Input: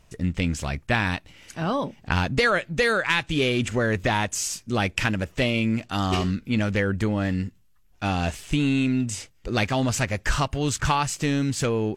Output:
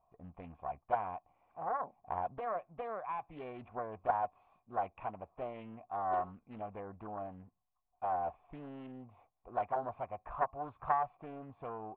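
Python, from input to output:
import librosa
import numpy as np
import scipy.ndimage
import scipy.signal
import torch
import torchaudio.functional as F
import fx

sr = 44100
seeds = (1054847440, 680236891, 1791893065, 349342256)

y = fx.formant_cascade(x, sr, vowel='a')
y = fx.doppler_dist(y, sr, depth_ms=0.37)
y = F.gain(torch.from_numpy(y), 1.0).numpy()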